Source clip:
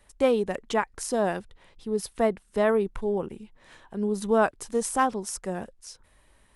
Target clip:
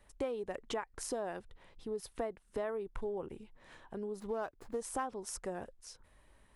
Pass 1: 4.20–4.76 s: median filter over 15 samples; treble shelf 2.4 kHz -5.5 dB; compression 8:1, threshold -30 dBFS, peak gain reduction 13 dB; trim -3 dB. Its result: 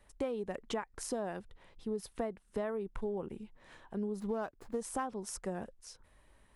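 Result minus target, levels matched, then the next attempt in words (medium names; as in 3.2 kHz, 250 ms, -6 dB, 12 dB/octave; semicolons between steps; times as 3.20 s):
250 Hz band +4.0 dB
4.20–4.76 s: median filter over 15 samples; treble shelf 2.4 kHz -5.5 dB; compression 8:1, threshold -30 dBFS, peak gain reduction 13 dB; dynamic bell 200 Hz, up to -8 dB, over -50 dBFS, Q 2.1; trim -3 dB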